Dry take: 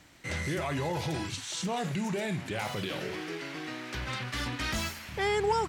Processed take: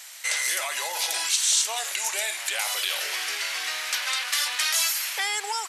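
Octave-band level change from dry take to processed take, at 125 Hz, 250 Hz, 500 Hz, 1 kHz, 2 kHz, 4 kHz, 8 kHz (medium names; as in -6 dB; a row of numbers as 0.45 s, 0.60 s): under -40 dB, under -20 dB, -8.0 dB, +1.0 dB, +8.5 dB, +13.0 dB, +18.5 dB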